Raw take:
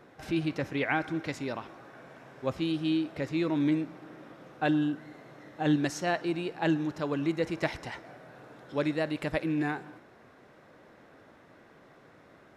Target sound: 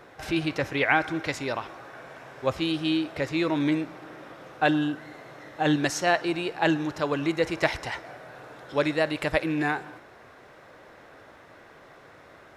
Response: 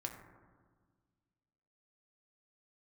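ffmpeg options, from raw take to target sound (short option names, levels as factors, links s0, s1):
-af "equalizer=f=210:t=o:w=1.6:g=-9,volume=2.51"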